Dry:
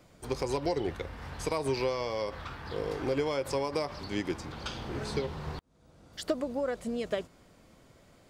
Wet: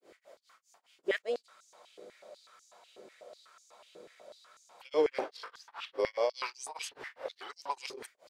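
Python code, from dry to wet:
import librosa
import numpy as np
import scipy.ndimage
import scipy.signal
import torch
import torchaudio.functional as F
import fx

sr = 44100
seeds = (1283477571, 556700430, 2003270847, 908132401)

y = x[::-1].copy()
y = fx.granulator(y, sr, seeds[0], grain_ms=214.0, per_s=4.9, spray_ms=21.0, spread_st=0)
y = fx.spec_freeze(y, sr, seeds[1], at_s=1.49, hold_s=3.33)
y = fx.filter_held_highpass(y, sr, hz=8.1, low_hz=390.0, high_hz=6300.0)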